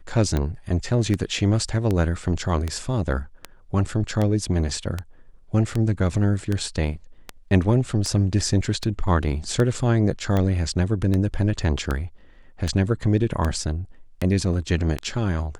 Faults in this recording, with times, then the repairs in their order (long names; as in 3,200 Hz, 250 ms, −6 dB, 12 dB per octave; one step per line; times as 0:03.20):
scratch tick 78 rpm −12 dBFS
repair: click removal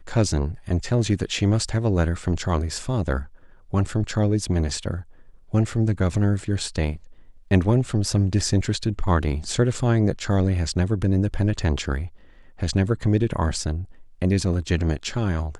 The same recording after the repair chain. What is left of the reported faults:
none of them is left